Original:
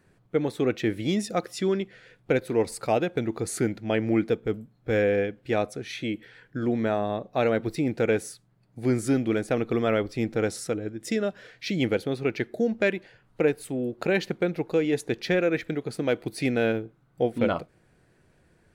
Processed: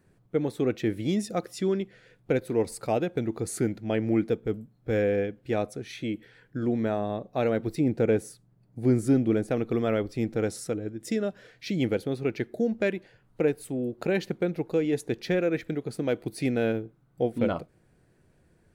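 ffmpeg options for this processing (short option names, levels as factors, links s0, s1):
-filter_complex "[0:a]asettb=1/sr,asplit=3[s0][s1][s2];[s0]atrim=end=7.804[s3];[s1]atrim=start=7.8:end=9.5,asetpts=PTS-STARTPTS,afade=t=in:d=0.004:c=qsin,afade=t=out:st=1.696:d=0.004:c=qsin,tiltshelf=f=970:g=3[s4];[s2]atrim=start=9.496[s5];[s3][s4]acrossfade=d=0.004:c1=hsin:c2=qsin[s6];[s6][s5]acrossfade=d=0.004:c1=qsin:c2=hsin,equalizer=f=2200:w=0.3:g=-5.5"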